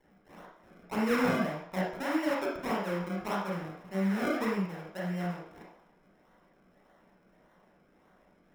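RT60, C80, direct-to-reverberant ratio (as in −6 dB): 0.60 s, 6.5 dB, −5.0 dB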